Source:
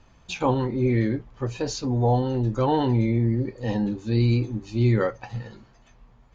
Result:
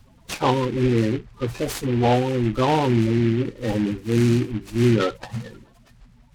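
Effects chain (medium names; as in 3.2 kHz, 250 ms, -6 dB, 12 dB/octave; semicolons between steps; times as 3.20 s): coarse spectral quantiser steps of 30 dB; delay time shaken by noise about 2 kHz, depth 0.056 ms; trim +3 dB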